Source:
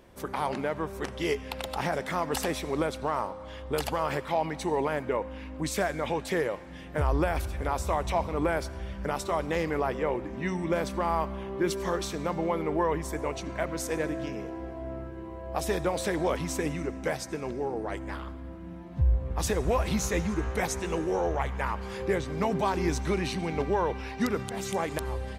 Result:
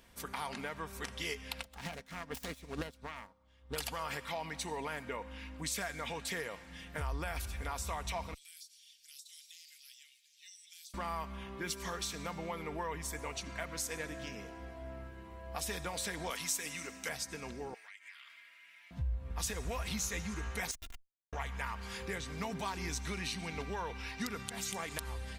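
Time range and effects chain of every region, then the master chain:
1.63–3.76 self-modulated delay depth 0.23 ms + low shelf 480 Hz +8.5 dB + upward expander 2.5:1, over -36 dBFS
8.34–10.94 inverse Chebyshev high-pass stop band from 1100 Hz, stop band 60 dB + compressor 16:1, threshold -50 dBFS
16.3–17.09 HPF 88 Hz + tilt +2.5 dB/oct
17.74–18.91 resonant high-pass 2200 Hz, resonance Q 3.8 + compressor, threshold -48 dBFS
20.71–21.33 steep high-pass 2800 Hz 96 dB/oct + Schmitt trigger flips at -40 dBFS + comb 2.9 ms, depth 95%
whole clip: passive tone stack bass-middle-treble 5-5-5; comb 4.3 ms, depth 32%; compressor 2:1, threshold -45 dBFS; gain +8 dB

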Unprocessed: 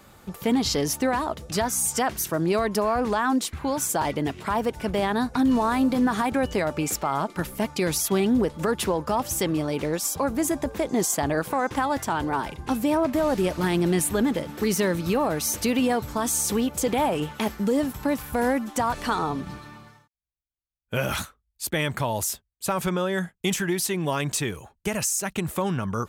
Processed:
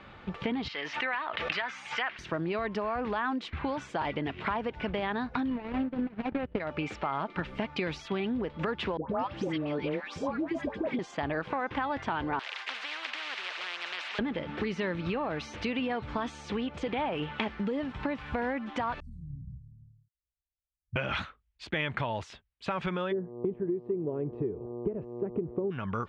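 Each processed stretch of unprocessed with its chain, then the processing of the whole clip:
0.68–2.19 band-pass 2100 Hz, Q 1.2 + backwards sustainer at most 26 dB/s
5.5–6.6 median filter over 41 samples + high shelf 3200 Hz -6.5 dB + transient shaper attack +11 dB, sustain -11 dB
8.97–10.99 HPF 290 Hz 6 dB/oct + low shelf 470 Hz +9.5 dB + dispersion highs, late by 0.127 s, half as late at 960 Hz
12.39–14.19 HPF 1400 Hz 24 dB/oct + spectral compressor 10:1
19–20.96 inverse Chebyshev band-stop 500–3300 Hz, stop band 70 dB + band shelf 990 Hz -15 dB 1.3 oct
23.11–25.7 buzz 120 Hz, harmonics 10, -42 dBFS -1 dB/oct + synth low-pass 400 Hz, resonance Q 4.5
whole clip: compressor 6:1, threshold -30 dBFS; LPF 2900 Hz 24 dB/oct; high shelf 2100 Hz +11.5 dB

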